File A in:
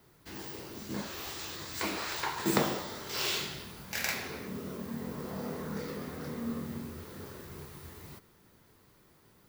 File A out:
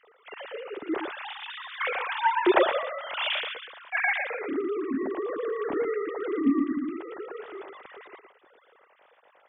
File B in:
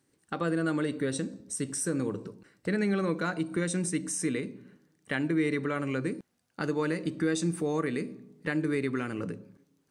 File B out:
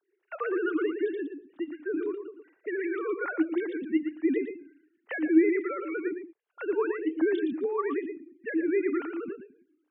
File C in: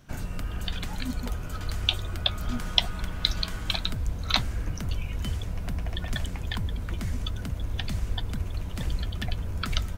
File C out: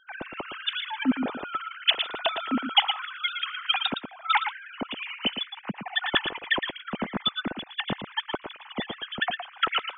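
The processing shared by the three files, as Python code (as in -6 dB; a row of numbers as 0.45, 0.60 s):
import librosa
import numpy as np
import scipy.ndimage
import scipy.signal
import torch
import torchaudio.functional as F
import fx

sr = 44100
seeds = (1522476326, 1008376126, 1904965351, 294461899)

p1 = fx.sine_speech(x, sr)
p2 = p1 + fx.echo_single(p1, sr, ms=115, db=-8.0, dry=0)
y = p2 * 10.0 ** (-30 / 20.0) / np.sqrt(np.mean(np.square(p2)))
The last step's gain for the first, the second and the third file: +7.5, +1.0, -2.0 dB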